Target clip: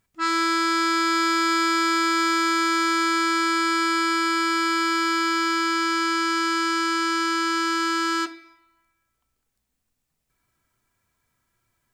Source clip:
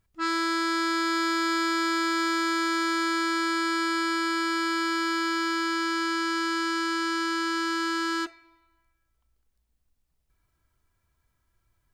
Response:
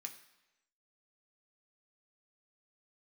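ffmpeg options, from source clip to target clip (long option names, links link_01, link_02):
-filter_complex "[0:a]lowshelf=frequency=120:gain=-7,asplit=2[link_01][link_02];[1:a]atrim=start_sample=2205,afade=type=out:start_time=0.39:duration=0.01,atrim=end_sample=17640,lowshelf=frequency=170:gain=11[link_03];[link_02][link_03]afir=irnorm=-1:irlink=0,volume=2dB[link_04];[link_01][link_04]amix=inputs=2:normalize=0"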